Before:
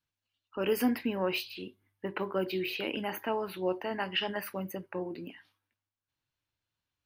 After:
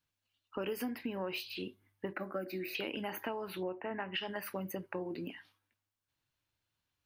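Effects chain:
0:02.13–0:02.75: phaser with its sweep stopped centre 640 Hz, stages 8
0:03.63–0:04.14: Chebyshev low-pass filter 2,600 Hz, order 5
downward compressor 6 to 1, threshold −37 dBFS, peak gain reduction 14 dB
level +2 dB

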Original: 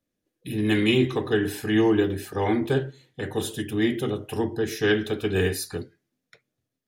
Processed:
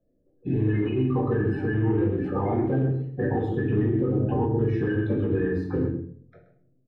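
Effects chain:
spectral magnitudes quantised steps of 30 dB
0:00.85–0:02.12: notch filter 3,400 Hz, Q 9.5
0:03.77–0:04.66: tilt shelving filter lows +4 dB, about 1,500 Hz
downward compressor 6 to 1, threshold −30 dBFS, peak gain reduction 14 dB
rectangular room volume 61 cubic metres, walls mixed, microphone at 0.83 metres
brickwall limiter −23 dBFS, peak gain reduction 8 dB
high-shelf EQ 2,300 Hz −10 dB
slap from a distant wall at 22 metres, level −11 dB
low-pass that shuts in the quiet parts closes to 830 Hz, open at −14 dBFS
level +7.5 dB

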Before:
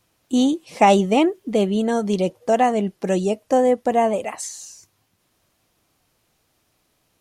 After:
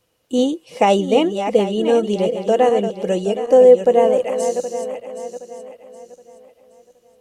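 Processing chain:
feedback delay that plays each chunk backwards 385 ms, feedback 57%, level −8.5 dB
hollow resonant body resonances 490/2,900 Hz, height 13 dB, ringing for 45 ms
level −2.5 dB

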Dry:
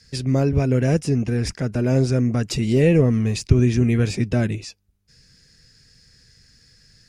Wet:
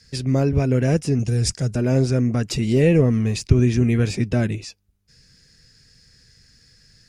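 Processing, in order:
0:01.19–0:01.76: octave-band graphic EQ 125/250/1,000/2,000/4,000/8,000 Hz +5/−6/−5/−6/+3/+11 dB

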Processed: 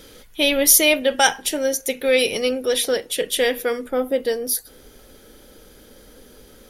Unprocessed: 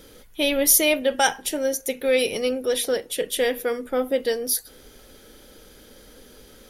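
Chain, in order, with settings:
parametric band 3,600 Hz +3.5 dB 2.7 octaves, from 0:03.88 −3 dB
level +2 dB

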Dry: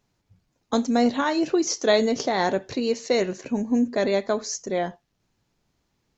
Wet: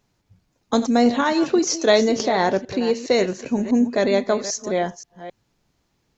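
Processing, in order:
delay that plays each chunk backwards 265 ms, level −13 dB
0:02.28–0:03.08: high-shelf EQ 4,900 Hz −7 dB
level +3.5 dB

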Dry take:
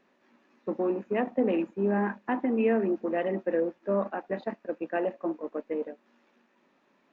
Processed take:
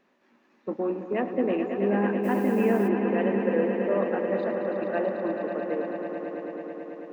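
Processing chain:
echo that builds up and dies away 109 ms, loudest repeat 5, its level −9 dB
0:02.23–0:02.87: background noise blue −53 dBFS

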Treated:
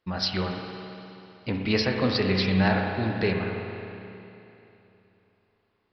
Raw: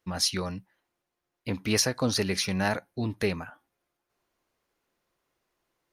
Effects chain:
spring reverb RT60 3 s, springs 32/53 ms, chirp 80 ms, DRR 1.5 dB
downsampling to 11,025 Hz
level +1.5 dB

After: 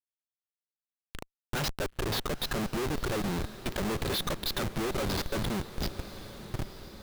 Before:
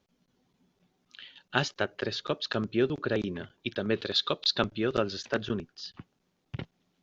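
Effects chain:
comparator with hysteresis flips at −35.5 dBFS
feedback delay with all-pass diffusion 959 ms, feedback 53%, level −13.5 dB
level +2.5 dB

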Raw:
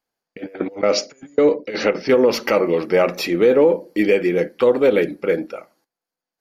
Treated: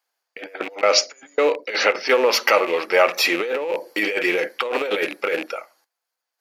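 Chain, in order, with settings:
loose part that buzzes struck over −32 dBFS, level −26 dBFS
high-pass filter 770 Hz 12 dB per octave
0:03.25–0:05.54: compressor whose output falls as the input rises −28 dBFS, ratio −1
level +6 dB

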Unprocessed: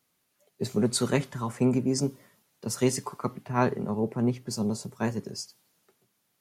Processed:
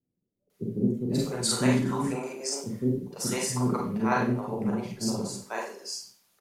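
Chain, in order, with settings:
multiband delay without the direct sound lows, highs 500 ms, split 430 Hz
four-comb reverb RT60 0.41 s, combs from 32 ms, DRR −3 dB
harmonic and percussive parts rebalanced harmonic −5 dB

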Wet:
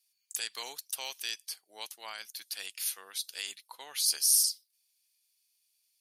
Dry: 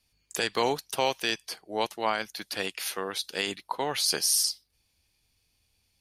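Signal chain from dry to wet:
first difference

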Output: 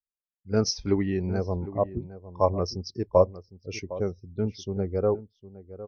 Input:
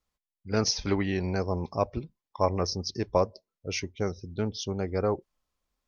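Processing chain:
0:01.57–0:02.02: low-pass filter 1,200 Hz
slap from a distant wall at 130 metres, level −10 dB
every bin expanded away from the loudest bin 1.5 to 1
level +3 dB

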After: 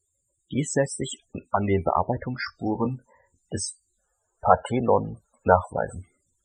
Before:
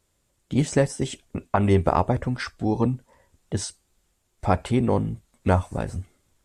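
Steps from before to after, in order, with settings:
0:03.99–0:05.94: gain on a spectral selection 430–1,800 Hz +7 dB
spectral tilt +2 dB per octave
spectral peaks only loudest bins 32
0:02.32–0:04.50: double-tracking delay 22 ms −9 dB

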